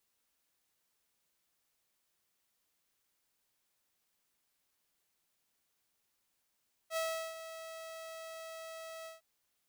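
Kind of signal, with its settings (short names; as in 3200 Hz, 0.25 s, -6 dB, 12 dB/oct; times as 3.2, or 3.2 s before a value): ADSR saw 649 Hz, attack 67 ms, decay 0.371 s, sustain -12.5 dB, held 2.16 s, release 0.149 s -29.5 dBFS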